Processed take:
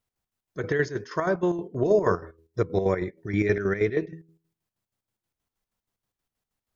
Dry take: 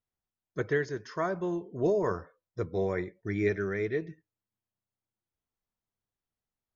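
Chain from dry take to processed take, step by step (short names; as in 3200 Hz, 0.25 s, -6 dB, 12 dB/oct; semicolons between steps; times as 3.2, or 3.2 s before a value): de-hum 81.57 Hz, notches 6; chopper 6.3 Hz, depth 60%, duty 55%; gain +8.5 dB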